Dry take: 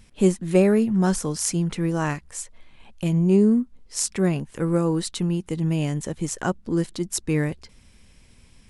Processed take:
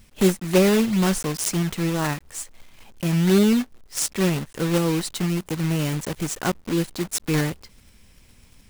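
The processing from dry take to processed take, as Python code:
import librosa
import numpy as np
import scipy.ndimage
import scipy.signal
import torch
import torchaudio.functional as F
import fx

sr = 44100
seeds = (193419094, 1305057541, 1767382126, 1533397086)

y = fx.block_float(x, sr, bits=3)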